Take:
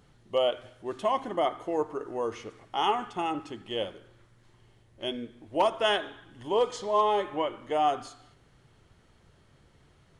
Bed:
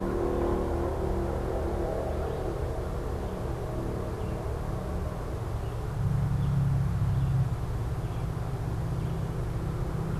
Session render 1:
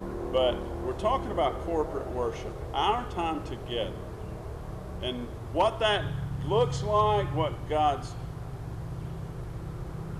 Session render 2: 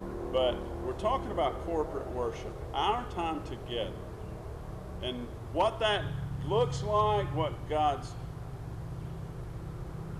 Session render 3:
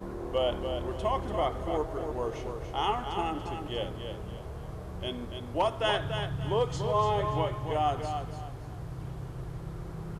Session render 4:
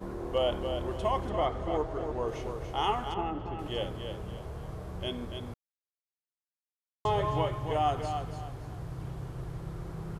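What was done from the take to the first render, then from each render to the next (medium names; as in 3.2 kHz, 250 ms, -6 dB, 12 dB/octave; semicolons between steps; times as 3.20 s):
add bed -6 dB
trim -3 dB
feedback delay 287 ms, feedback 30%, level -7 dB
1.29–2.28 s: distance through air 52 m; 3.14–3.59 s: tape spacing loss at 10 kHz 27 dB; 5.54–7.05 s: mute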